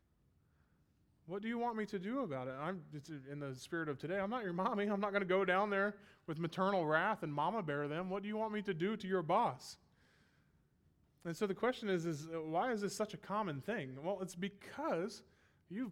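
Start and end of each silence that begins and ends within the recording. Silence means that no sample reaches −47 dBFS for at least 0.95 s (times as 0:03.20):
0:09.74–0:11.25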